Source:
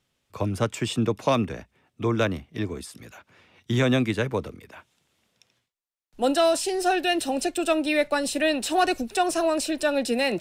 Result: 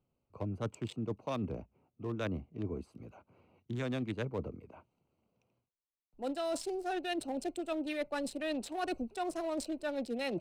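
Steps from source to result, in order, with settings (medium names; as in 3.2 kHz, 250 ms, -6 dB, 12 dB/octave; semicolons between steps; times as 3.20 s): local Wiener filter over 25 samples; reverse; compression, threshold -30 dBFS, peak gain reduction 13 dB; reverse; trim -3.5 dB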